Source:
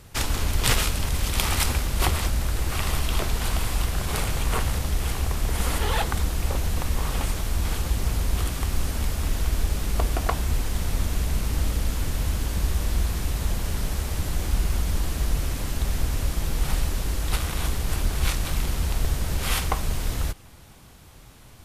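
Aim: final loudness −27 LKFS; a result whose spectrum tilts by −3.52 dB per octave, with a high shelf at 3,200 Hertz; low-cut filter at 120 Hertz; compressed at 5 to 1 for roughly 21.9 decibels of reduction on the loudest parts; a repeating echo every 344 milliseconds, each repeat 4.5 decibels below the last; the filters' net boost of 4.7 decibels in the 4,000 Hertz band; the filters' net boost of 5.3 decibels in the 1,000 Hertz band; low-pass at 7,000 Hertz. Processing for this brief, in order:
high-pass filter 120 Hz
low-pass filter 7,000 Hz
parametric band 1,000 Hz +6.5 dB
high-shelf EQ 3,200 Hz −3.5 dB
parametric band 4,000 Hz +8.5 dB
downward compressor 5 to 1, threshold −43 dBFS
repeating echo 344 ms, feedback 60%, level −4.5 dB
level +15 dB

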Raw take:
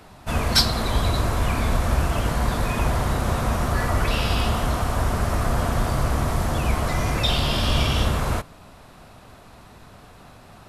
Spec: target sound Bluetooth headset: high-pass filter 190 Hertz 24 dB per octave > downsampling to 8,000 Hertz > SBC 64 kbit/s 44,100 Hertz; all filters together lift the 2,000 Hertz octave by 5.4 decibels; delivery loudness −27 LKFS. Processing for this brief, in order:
high-pass filter 190 Hz 24 dB per octave
parametric band 2,000 Hz +7 dB
downsampling to 8,000 Hz
level −2.5 dB
SBC 64 kbit/s 44,100 Hz

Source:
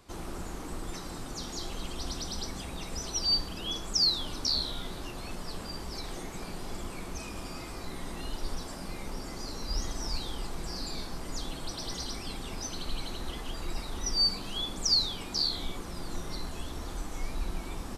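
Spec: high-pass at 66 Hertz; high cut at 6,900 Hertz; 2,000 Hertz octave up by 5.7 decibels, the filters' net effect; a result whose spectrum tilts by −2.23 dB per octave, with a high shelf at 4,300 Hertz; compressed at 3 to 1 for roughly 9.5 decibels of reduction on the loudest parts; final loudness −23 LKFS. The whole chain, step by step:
high-pass filter 66 Hz
low-pass filter 6,900 Hz
parametric band 2,000 Hz +6 dB
high-shelf EQ 4,300 Hz +5.5 dB
downward compressor 3 to 1, threshold −32 dBFS
level +13 dB

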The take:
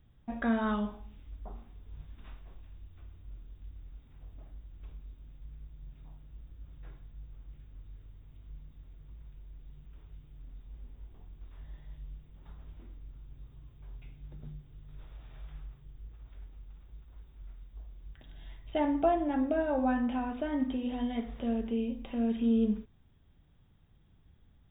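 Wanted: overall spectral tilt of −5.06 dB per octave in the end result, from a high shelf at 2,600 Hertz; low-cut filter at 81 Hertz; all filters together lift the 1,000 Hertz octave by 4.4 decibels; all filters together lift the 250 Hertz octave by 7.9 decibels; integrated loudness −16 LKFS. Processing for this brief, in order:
high-pass filter 81 Hz
parametric band 250 Hz +8.5 dB
parametric band 1,000 Hz +6.5 dB
high-shelf EQ 2,600 Hz −6.5 dB
level +8.5 dB

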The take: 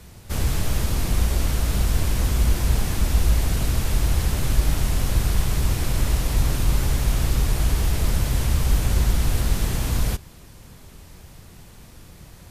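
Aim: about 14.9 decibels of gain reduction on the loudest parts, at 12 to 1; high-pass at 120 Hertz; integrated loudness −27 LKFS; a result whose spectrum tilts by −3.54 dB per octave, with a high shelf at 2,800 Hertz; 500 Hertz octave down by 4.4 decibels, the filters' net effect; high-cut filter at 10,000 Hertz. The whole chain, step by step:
high-pass filter 120 Hz
low-pass filter 10,000 Hz
parametric band 500 Hz −6 dB
high-shelf EQ 2,800 Hz +5 dB
downward compressor 12 to 1, threshold −39 dBFS
level +15 dB

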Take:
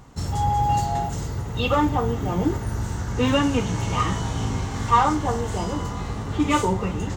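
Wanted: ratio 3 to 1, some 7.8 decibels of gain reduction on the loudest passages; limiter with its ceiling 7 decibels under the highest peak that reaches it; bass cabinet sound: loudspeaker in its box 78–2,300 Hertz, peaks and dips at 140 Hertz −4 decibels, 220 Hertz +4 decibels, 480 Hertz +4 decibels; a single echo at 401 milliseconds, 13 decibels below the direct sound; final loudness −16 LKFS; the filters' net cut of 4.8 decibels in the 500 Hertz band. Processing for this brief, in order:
parametric band 500 Hz −8.5 dB
downward compressor 3 to 1, threshold −24 dBFS
brickwall limiter −21 dBFS
loudspeaker in its box 78–2,300 Hz, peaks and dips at 140 Hz −4 dB, 220 Hz +4 dB, 480 Hz +4 dB
single-tap delay 401 ms −13 dB
level +15 dB

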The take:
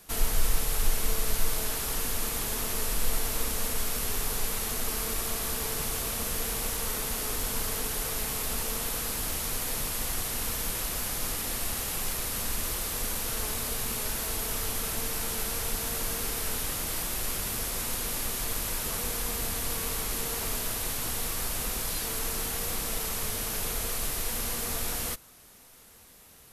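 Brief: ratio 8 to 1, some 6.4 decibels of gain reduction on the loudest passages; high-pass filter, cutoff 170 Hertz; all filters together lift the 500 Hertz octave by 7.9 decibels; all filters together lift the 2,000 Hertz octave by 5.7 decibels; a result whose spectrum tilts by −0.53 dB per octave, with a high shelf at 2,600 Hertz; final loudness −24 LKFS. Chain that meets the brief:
high-pass filter 170 Hz
parametric band 500 Hz +9 dB
parametric band 2,000 Hz +4.5 dB
high-shelf EQ 2,600 Hz +4.5 dB
downward compressor 8 to 1, threshold −31 dBFS
level +8 dB

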